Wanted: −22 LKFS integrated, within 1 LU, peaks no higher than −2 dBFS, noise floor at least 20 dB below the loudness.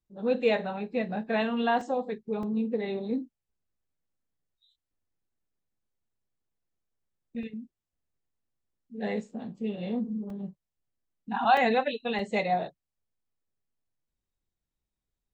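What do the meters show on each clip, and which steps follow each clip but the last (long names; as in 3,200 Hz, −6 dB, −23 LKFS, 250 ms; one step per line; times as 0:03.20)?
number of dropouts 6; longest dropout 2.6 ms; integrated loudness −29.5 LKFS; sample peak −11.0 dBFS; target loudness −22.0 LKFS
→ repair the gap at 0:01.81/0:02.43/0:07.43/0:10.30/0:11.57/0:12.19, 2.6 ms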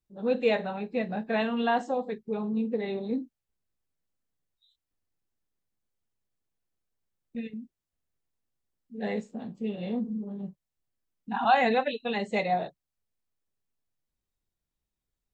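number of dropouts 0; integrated loudness −29.5 LKFS; sample peak −11.0 dBFS; target loudness −22.0 LKFS
→ level +7.5 dB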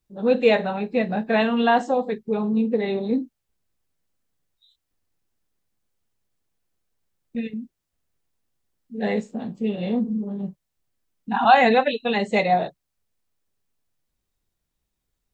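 integrated loudness −22.0 LKFS; sample peak −3.5 dBFS; background noise floor −80 dBFS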